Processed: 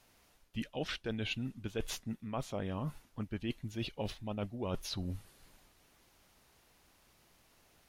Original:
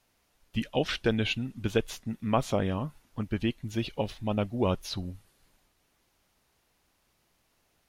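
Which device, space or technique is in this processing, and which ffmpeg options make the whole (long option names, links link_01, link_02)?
compression on the reversed sound: -af "areverse,acompressor=threshold=-40dB:ratio=6,areverse,volume=4.5dB"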